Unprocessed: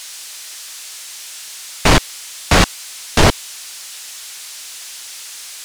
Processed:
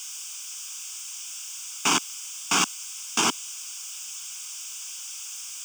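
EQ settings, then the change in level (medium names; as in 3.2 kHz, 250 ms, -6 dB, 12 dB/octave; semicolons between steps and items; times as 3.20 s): high-pass 230 Hz 24 dB/octave; treble shelf 4.5 kHz +10 dB; static phaser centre 2.8 kHz, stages 8; -8.0 dB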